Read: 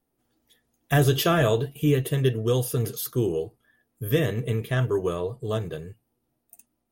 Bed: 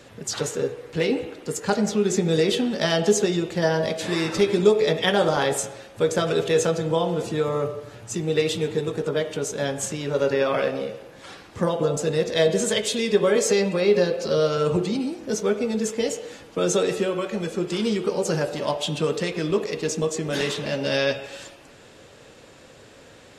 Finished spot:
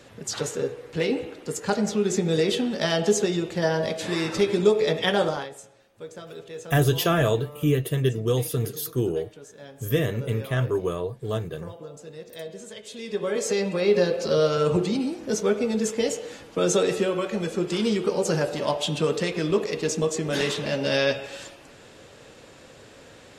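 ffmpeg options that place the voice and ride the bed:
-filter_complex "[0:a]adelay=5800,volume=-0.5dB[a];[1:a]volume=16dB,afade=t=out:st=5.21:d=0.28:silence=0.158489,afade=t=in:st=12.83:d=1.33:silence=0.125893[b];[a][b]amix=inputs=2:normalize=0"

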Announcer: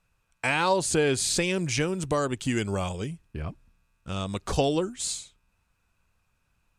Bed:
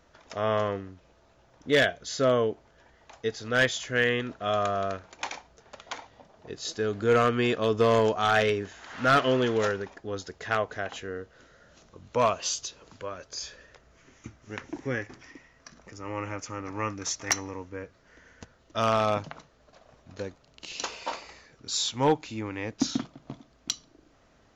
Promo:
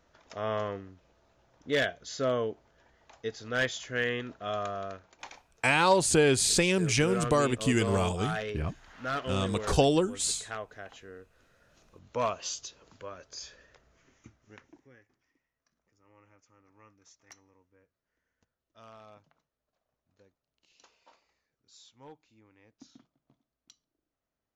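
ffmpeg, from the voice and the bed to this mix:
-filter_complex "[0:a]adelay=5200,volume=1dB[a];[1:a]afade=t=out:st=4.33:d=0.98:silence=0.501187,afade=t=in:st=11.39:d=0.6:silence=0.530884,afade=t=out:st=13.82:d=1.07:silence=0.0841395[b];[a][b]amix=inputs=2:normalize=0"

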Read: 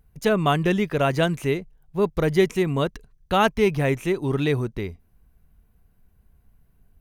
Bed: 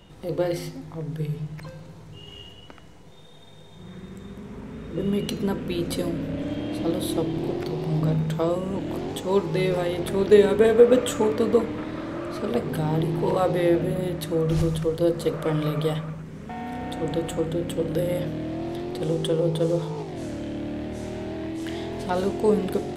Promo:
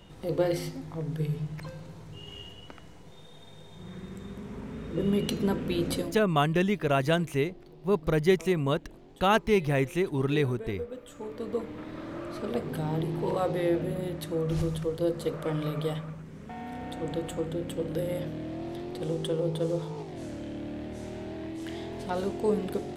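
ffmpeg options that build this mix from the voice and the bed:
-filter_complex "[0:a]adelay=5900,volume=-4dB[a];[1:a]volume=15.5dB,afade=t=out:st=5.92:d=0.28:silence=0.0841395,afade=t=in:st=11.07:d=1.1:silence=0.141254[b];[a][b]amix=inputs=2:normalize=0"

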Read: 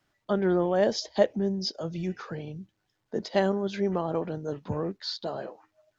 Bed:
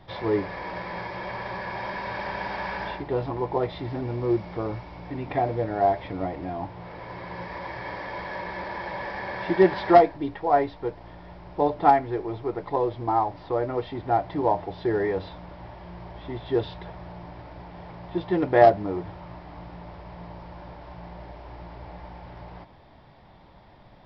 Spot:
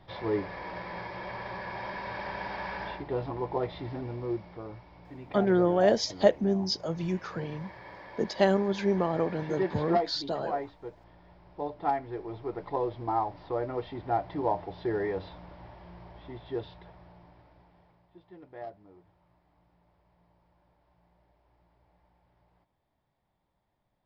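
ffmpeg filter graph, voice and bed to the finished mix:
-filter_complex "[0:a]adelay=5050,volume=1dB[a];[1:a]volume=1.5dB,afade=t=out:st=3.85:d=0.74:silence=0.446684,afade=t=in:st=11.78:d=0.83:silence=0.473151,afade=t=out:st=15.35:d=2.73:silence=0.0891251[b];[a][b]amix=inputs=2:normalize=0"

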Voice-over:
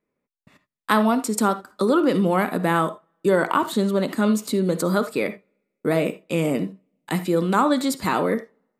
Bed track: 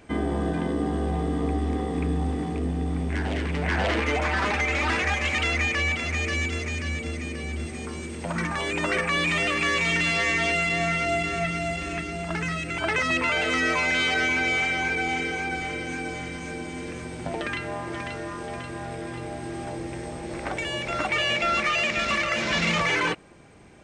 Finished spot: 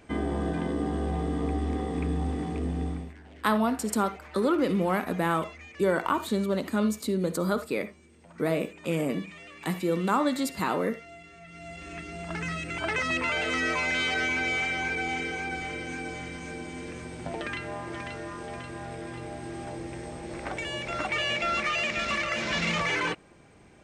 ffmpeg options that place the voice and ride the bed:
-filter_complex "[0:a]adelay=2550,volume=-6dB[a];[1:a]volume=15.5dB,afade=t=out:st=2.85:d=0.29:silence=0.105925,afade=t=in:st=11.45:d=1.04:silence=0.11885[b];[a][b]amix=inputs=2:normalize=0"

